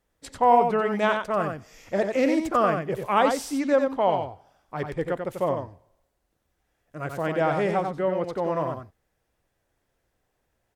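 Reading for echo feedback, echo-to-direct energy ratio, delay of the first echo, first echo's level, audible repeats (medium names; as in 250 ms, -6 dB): no regular repeats, -5.5 dB, 91 ms, -5.5 dB, 1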